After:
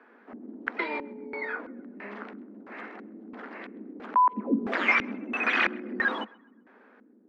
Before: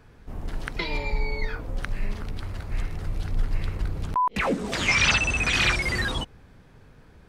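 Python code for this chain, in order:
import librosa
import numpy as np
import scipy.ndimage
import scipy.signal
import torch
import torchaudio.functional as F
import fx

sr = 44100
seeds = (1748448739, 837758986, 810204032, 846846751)

y = scipy.signal.sosfilt(scipy.signal.butter(16, 210.0, 'highpass', fs=sr, output='sos'), x)
y = fx.filter_lfo_lowpass(y, sr, shape='square', hz=1.5, low_hz=270.0, high_hz=1700.0, q=1.6)
y = fx.echo_banded(y, sr, ms=131, feedback_pct=41, hz=1400.0, wet_db=-23.0)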